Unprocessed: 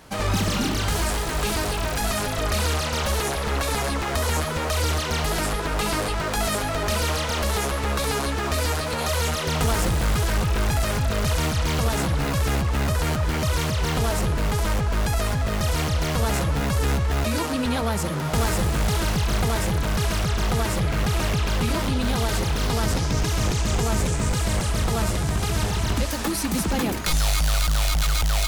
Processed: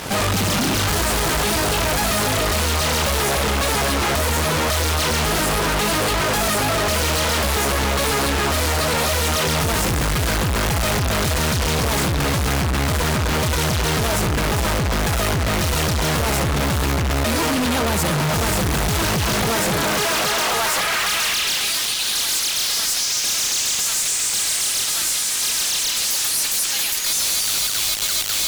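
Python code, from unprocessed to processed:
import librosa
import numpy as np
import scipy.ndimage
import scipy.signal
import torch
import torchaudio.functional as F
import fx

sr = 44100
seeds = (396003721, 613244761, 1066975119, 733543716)

y = fx.filter_sweep_highpass(x, sr, from_hz=62.0, to_hz=4000.0, start_s=18.86, end_s=21.76, q=0.71)
y = fx.fuzz(y, sr, gain_db=45.0, gate_db=-49.0)
y = y * 10.0 ** (-5.5 / 20.0)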